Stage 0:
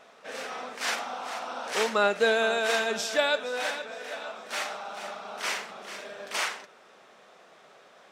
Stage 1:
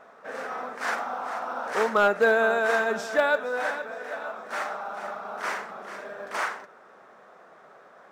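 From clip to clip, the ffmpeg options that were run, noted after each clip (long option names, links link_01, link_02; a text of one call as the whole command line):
ffmpeg -i in.wav -af "acrusher=bits=7:mode=log:mix=0:aa=0.000001,highshelf=frequency=2100:width_type=q:width=1.5:gain=-10,volume=15.5dB,asoftclip=hard,volume=-15.5dB,volume=2.5dB" out.wav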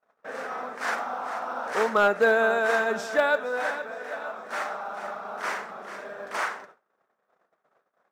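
ffmpeg -i in.wav -af "agate=range=-35dB:threshold=-48dB:ratio=16:detection=peak" out.wav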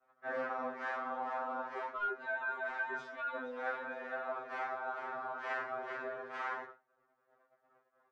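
ffmpeg -i in.wav -af "lowpass=2500,areverse,acompressor=threshold=-34dB:ratio=6,areverse,afftfilt=real='re*2.45*eq(mod(b,6),0)':imag='im*2.45*eq(mod(b,6),0)':win_size=2048:overlap=0.75,volume=1dB" out.wav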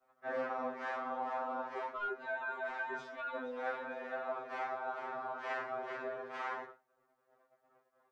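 ffmpeg -i in.wav -af "equalizer=frequency=1500:width=1.7:gain=-4.5,volume=1.5dB" out.wav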